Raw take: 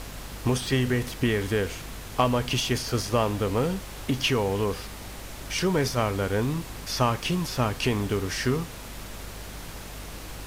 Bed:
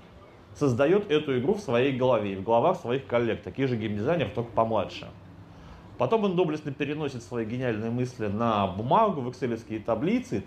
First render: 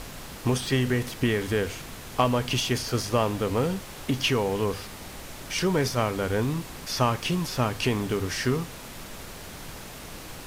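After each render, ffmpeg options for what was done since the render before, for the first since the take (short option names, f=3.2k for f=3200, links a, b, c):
-af "bandreject=f=50:t=h:w=4,bandreject=f=100:t=h:w=4"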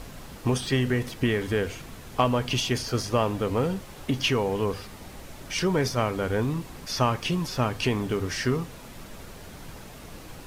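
-af "afftdn=nr=6:nf=-41"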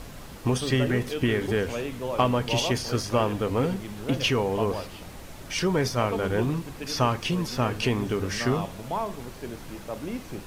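-filter_complex "[1:a]volume=-8.5dB[a];[0:a][a]amix=inputs=2:normalize=0"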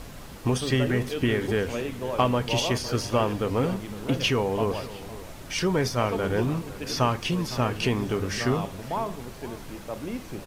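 -filter_complex "[0:a]asplit=2[a][b];[b]adelay=507.3,volume=-16dB,highshelf=f=4k:g=-11.4[c];[a][c]amix=inputs=2:normalize=0"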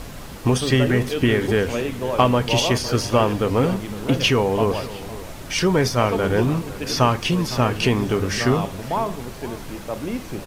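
-af "volume=6dB"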